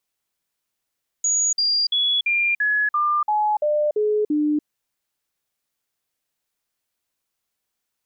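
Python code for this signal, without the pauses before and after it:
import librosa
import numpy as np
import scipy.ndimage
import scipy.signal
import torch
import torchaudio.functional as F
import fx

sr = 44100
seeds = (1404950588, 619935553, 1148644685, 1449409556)

y = fx.stepped_sweep(sr, from_hz=6770.0, direction='down', per_octave=2, tones=10, dwell_s=0.29, gap_s=0.05, level_db=-17.0)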